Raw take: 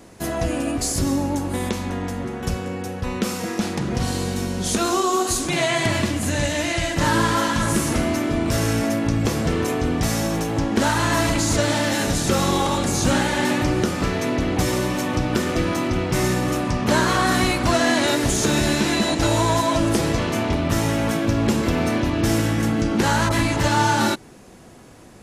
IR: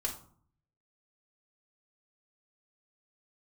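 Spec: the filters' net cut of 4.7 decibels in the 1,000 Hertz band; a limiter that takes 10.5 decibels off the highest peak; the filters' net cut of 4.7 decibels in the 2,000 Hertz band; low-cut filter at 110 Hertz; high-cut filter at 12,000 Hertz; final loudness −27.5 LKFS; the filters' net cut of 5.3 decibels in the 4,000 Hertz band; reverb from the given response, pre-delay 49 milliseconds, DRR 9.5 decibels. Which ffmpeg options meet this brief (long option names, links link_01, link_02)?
-filter_complex "[0:a]highpass=110,lowpass=12000,equalizer=frequency=1000:width_type=o:gain=-5,equalizer=frequency=2000:width_type=o:gain=-3,equalizer=frequency=4000:width_type=o:gain=-5.5,alimiter=limit=-18dB:level=0:latency=1,asplit=2[link_01][link_02];[1:a]atrim=start_sample=2205,adelay=49[link_03];[link_02][link_03]afir=irnorm=-1:irlink=0,volume=-12dB[link_04];[link_01][link_04]amix=inputs=2:normalize=0,volume=-1dB"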